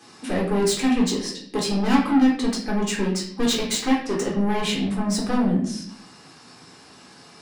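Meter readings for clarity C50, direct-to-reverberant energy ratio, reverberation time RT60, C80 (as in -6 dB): 5.0 dB, -3.5 dB, 0.60 s, 9.0 dB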